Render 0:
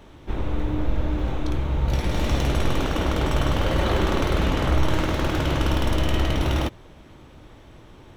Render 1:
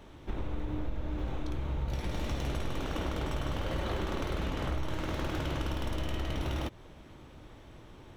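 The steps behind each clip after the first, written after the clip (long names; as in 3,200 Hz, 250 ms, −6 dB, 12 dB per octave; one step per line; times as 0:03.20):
downward compressor 4 to 1, threshold −26 dBFS, peak gain reduction 10.5 dB
level −4.5 dB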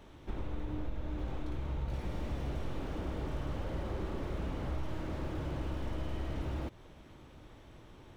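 slew-rate limiting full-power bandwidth 9.4 Hz
level −3 dB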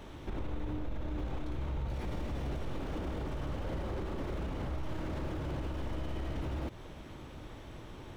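brickwall limiter −36 dBFS, peak gain reduction 10.5 dB
level +7 dB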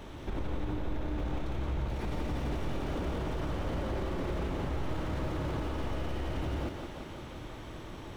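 feedback echo with a high-pass in the loop 174 ms, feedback 72%, high-pass 170 Hz, level −5 dB
level +2.5 dB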